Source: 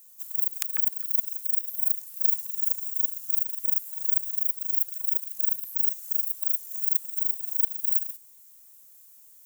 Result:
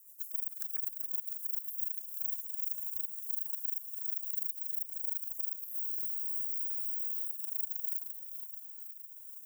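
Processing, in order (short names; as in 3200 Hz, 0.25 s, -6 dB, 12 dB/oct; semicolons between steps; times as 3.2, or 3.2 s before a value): rotary speaker horn 7.5 Hz, later 1.2 Hz, at 1.8; overloaded stage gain 24 dB; HPF 410 Hz 12 dB/oct; fixed phaser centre 630 Hz, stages 8; thin delay 0.469 s, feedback 72%, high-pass 4800 Hz, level -15.5 dB; compressor 3:1, threshold -36 dBFS, peak gain reduction 7.5 dB; high shelf 6500 Hz +11 dB; spectral freeze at 5.76, 1.50 s; gain -8 dB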